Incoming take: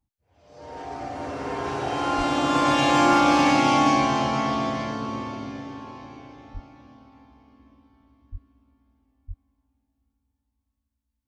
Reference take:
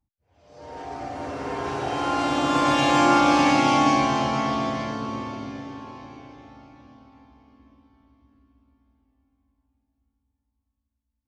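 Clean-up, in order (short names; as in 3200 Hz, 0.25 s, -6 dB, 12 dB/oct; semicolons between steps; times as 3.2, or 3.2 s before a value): clip repair -10.5 dBFS; de-plosive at 2.17/6.53/8.31/9.27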